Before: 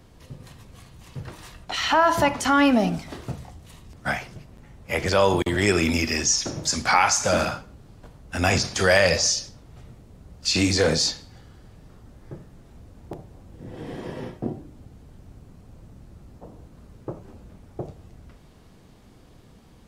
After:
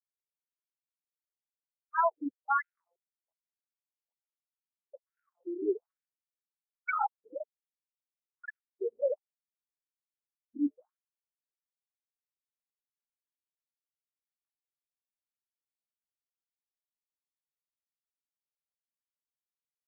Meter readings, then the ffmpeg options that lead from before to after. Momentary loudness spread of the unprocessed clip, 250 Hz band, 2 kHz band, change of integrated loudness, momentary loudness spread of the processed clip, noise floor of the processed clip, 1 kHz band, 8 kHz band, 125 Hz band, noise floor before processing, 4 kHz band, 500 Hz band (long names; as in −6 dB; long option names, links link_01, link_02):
21 LU, −15.5 dB, −17.5 dB, −12.0 dB, 17 LU, below −85 dBFS, −11.0 dB, below −40 dB, below −40 dB, −51 dBFS, below −40 dB, −13.5 dB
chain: -af "afftfilt=real='re*gte(hypot(re,im),0.501)':imag='im*gte(hypot(re,im),0.501)':win_size=1024:overlap=0.75,afftfilt=real='re*between(b*sr/1024,330*pow(2000/330,0.5+0.5*sin(2*PI*1.2*pts/sr))/1.41,330*pow(2000/330,0.5+0.5*sin(2*PI*1.2*pts/sr))*1.41)':imag='im*between(b*sr/1024,330*pow(2000/330,0.5+0.5*sin(2*PI*1.2*pts/sr))/1.41,330*pow(2000/330,0.5+0.5*sin(2*PI*1.2*pts/sr))*1.41)':win_size=1024:overlap=0.75,volume=-5dB"